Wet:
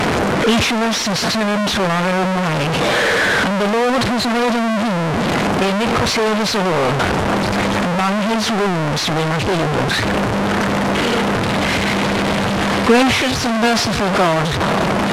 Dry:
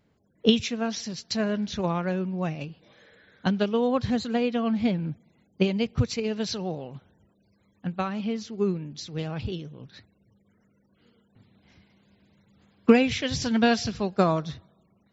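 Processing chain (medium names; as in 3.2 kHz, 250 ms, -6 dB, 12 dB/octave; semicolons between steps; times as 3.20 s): one-bit delta coder 64 kbps, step -14 dBFS; overdrive pedal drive 12 dB, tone 1.4 kHz, clips at -2.5 dBFS; decay stretcher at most 31 dB/s; trim +3.5 dB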